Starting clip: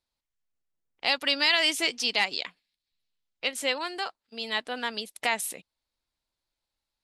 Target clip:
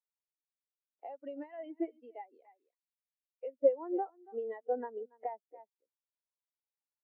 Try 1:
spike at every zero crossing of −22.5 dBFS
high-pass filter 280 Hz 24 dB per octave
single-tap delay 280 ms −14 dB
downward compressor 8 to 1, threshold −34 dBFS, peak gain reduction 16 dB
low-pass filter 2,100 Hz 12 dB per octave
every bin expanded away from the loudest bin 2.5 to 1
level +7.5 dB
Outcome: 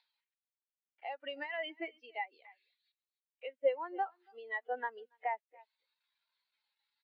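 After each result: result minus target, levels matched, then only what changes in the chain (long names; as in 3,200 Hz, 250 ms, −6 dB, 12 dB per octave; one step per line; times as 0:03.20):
1,000 Hz band +6.0 dB; spike at every zero crossing: distortion +8 dB
add after low-pass filter: tilt shelving filter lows +7.5 dB, about 870 Hz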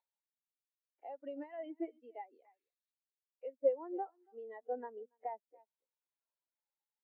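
spike at every zero crossing: distortion +8 dB
change: spike at every zero crossing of −31 dBFS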